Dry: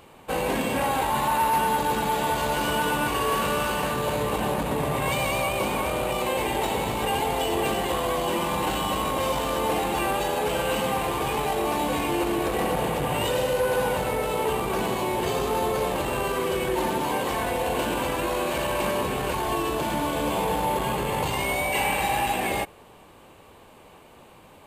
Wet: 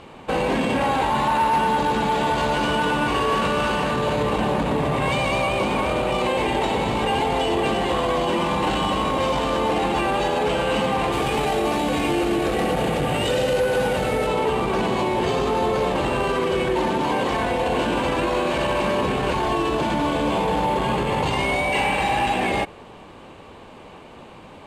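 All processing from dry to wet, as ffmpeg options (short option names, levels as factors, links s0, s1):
-filter_complex "[0:a]asettb=1/sr,asplit=3[s0][s1][s2];[s0]atrim=end=11.124[s3];[s1]atrim=start=11.12:end=14.27,asetpts=PTS-STARTPTS,afade=t=in:d=0.004:c=qsin,afade=t=out:st=3.146:d=0.004:c=qsin,highshelf=f=8400:g=10.5,bandreject=f=990:w=5.2[s4];[s2]atrim=start=14.266[s5];[s3][s4]acrossfade=d=0.004:c1=hsin:c2=qsin[s6];[s6][s5]acrossfade=d=0.004:c1=qsin:c2=hsin,lowpass=5600,equalizer=f=230:t=o:w=1.1:g=3,alimiter=limit=0.0891:level=0:latency=1,volume=2.24"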